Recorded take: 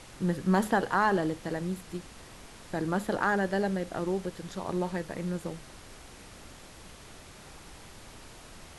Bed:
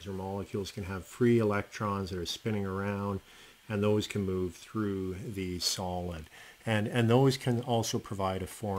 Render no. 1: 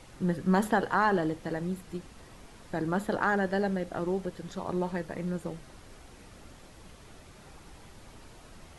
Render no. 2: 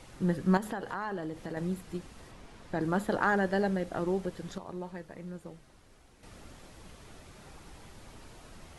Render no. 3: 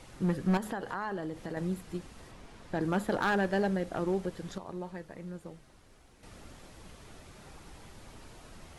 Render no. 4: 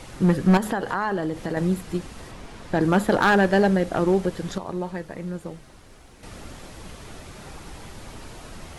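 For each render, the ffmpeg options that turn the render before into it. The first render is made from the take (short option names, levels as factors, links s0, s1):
-af "afftdn=nr=6:nf=-50"
-filter_complex "[0:a]asettb=1/sr,asplit=3[s0][s1][s2];[s0]atrim=end=0.574[s3];[s1]atrim=start=0.57:end=1.57,asetpts=PTS-STARTPTS,afade=t=in:d=0.004:c=qsin,afade=t=out:st=0.996:d=0.004:c=qsin,acompressor=threshold=0.0178:ratio=3:attack=3.2:release=140:knee=1:detection=peak[s4];[s2]atrim=start=1.566[s5];[s3][s4]acrossfade=d=0.004:c1=hsin:c2=qsin[s6];[s6][s5]acrossfade=d=0.004:c1=qsin:c2=hsin,asettb=1/sr,asplit=3[s7][s8][s9];[s7]atrim=end=2.314[s10];[s8]atrim=start=2.31:end=2.81,asetpts=PTS-STARTPTS,afade=t=in:d=0.004:c=qsin,afade=t=out:st=0.496:d=0.004:c=qsin,highshelf=f=8100:g=-10.5[s11];[s9]atrim=start=2.806[s12];[s10][s11]acrossfade=d=0.004:c1=hsin:c2=qsin[s13];[s13][s12]acrossfade=d=0.004:c1=qsin:c2=hsin,asplit=3[s14][s15][s16];[s14]atrim=end=4.582[s17];[s15]atrim=start=4.578:end=6.232,asetpts=PTS-STARTPTS,volume=0.355[s18];[s16]atrim=start=6.228[s19];[s17][s18]acrossfade=d=0.004:c1=hsin:c2=hsin[s20];[s20][s19]acrossfade=d=0.004:c1=hsin:c2=hsin"
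-af "asoftclip=type=hard:threshold=0.0794"
-af "volume=3.35"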